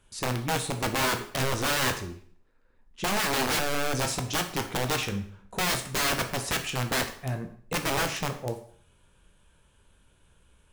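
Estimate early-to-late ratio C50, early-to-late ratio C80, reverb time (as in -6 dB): 11.0 dB, 14.0 dB, 0.55 s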